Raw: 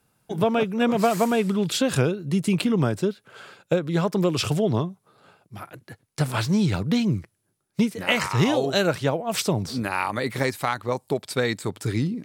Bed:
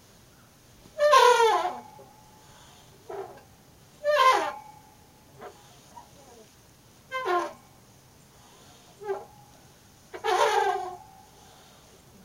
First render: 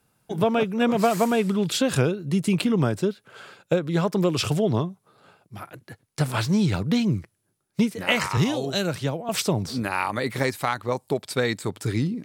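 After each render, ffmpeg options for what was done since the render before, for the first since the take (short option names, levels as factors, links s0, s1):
-filter_complex "[0:a]asettb=1/sr,asplit=3[s0][s1][s2];[s0]atrim=end=8.374[s3];[s1]atrim=start=8.37:end=9.29,asetpts=PTS-STARTPTS,afade=t=in:d=0.004:c=qsin,afade=t=out:st=0.916:d=0.004:c=qsin,acrossover=split=280|3000[s4][s5][s6];[s5]acompressor=threshold=0.0126:ratio=1.5:attack=3.2:release=140:knee=2.83:detection=peak[s7];[s4][s7][s6]amix=inputs=3:normalize=0[s8];[s2]atrim=start=9.286[s9];[s3][s8]acrossfade=d=0.004:c1=hsin:c2=qsin[s10];[s10][s9]acrossfade=d=0.004:c1=qsin:c2=hsin"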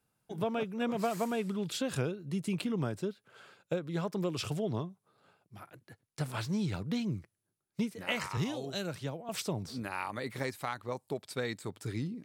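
-af "volume=0.266"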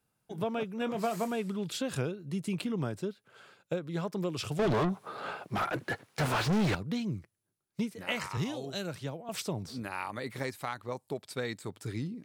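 -filter_complex "[0:a]asettb=1/sr,asplit=3[s0][s1][s2];[s0]atrim=end=0.794[s3];[s1]atrim=start=0.79:end=1.28,asetpts=PTS-STARTPTS,afade=t=in:d=0.004:c=qsin,afade=t=out:st=0.486:d=0.004:c=qsin,asplit=2[s4][s5];[s5]adelay=23,volume=0.282[s6];[s4][s6]amix=inputs=2:normalize=0,atrim=end_sample=21609[s7];[s2]atrim=start=1.276[s8];[s3][s7]acrossfade=d=0.004:c1=hsin:c2=qsin[s9];[s9][s8]acrossfade=d=0.004:c1=qsin:c2=hsin,asettb=1/sr,asplit=3[s10][s11][s12];[s10]atrim=end=4.594[s13];[s11]atrim=start=4.59:end=6.75,asetpts=PTS-STARTPTS,afade=t=in:d=0.004:c=qsin,afade=t=out:st=2.156:d=0.004:c=qsin,asplit=2[s14][s15];[s15]highpass=f=720:p=1,volume=89.1,asoftclip=type=tanh:threshold=0.1[s16];[s14][s16]amix=inputs=2:normalize=0,lowpass=f=1600:p=1,volume=0.501[s17];[s12]atrim=start=6.746[s18];[s13][s17]acrossfade=d=0.004:c1=hsin:c2=qsin[s19];[s19][s18]acrossfade=d=0.004:c1=qsin:c2=hsin"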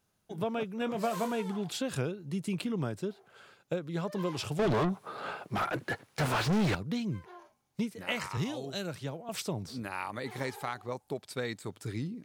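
-filter_complex "[1:a]volume=0.0562[s0];[0:a][s0]amix=inputs=2:normalize=0"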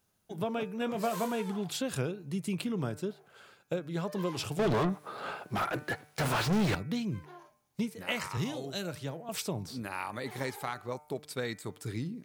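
-af "highshelf=f=11000:g=7,bandreject=f=149.9:t=h:w=4,bandreject=f=299.8:t=h:w=4,bandreject=f=449.7:t=h:w=4,bandreject=f=599.6:t=h:w=4,bandreject=f=749.5:t=h:w=4,bandreject=f=899.4:t=h:w=4,bandreject=f=1049.3:t=h:w=4,bandreject=f=1199.2:t=h:w=4,bandreject=f=1349.1:t=h:w=4,bandreject=f=1499:t=h:w=4,bandreject=f=1648.9:t=h:w=4,bandreject=f=1798.8:t=h:w=4,bandreject=f=1948.7:t=h:w=4,bandreject=f=2098.6:t=h:w=4,bandreject=f=2248.5:t=h:w=4,bandreject=f=2398.4:t=h:w=4,bandreject=f=2548.3:t=h:w=4"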